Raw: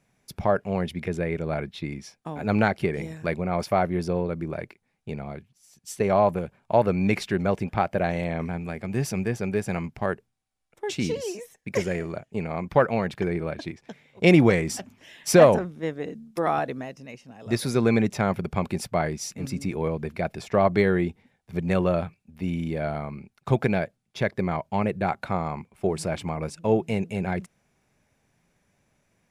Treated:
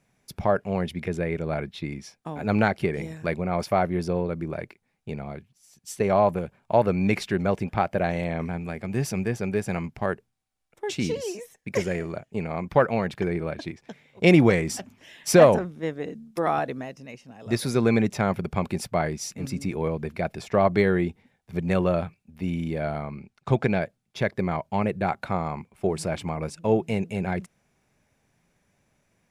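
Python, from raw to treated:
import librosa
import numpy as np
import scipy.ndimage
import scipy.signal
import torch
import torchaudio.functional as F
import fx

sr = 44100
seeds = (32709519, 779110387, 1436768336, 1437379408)

y = fx.lowpass(x, sr, hz=8100.0, slope=12, at=(23.02, 23.81))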